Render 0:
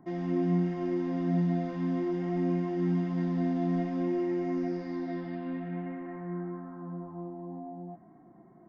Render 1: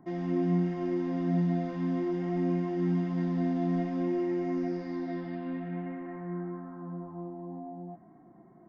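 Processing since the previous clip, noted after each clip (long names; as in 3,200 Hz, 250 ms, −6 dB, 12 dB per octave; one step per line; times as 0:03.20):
no processing that can be heard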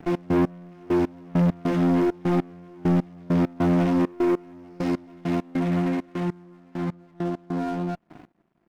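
lower of the sound and its delayed copy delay 0.35 ms
leveller curve on the samples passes 3
gate pattern "x.x...x..x.xx" 100 BPM −24 dB
level +3.5 dB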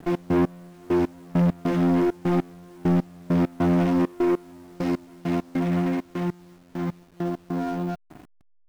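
hold until the input has moved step −50 dBFS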